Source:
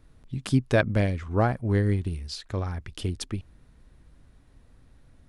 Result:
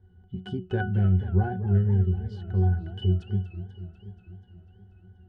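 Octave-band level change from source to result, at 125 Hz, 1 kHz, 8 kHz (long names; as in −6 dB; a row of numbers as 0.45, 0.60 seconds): +3.5 dB, −4.5 dB, below −25 dB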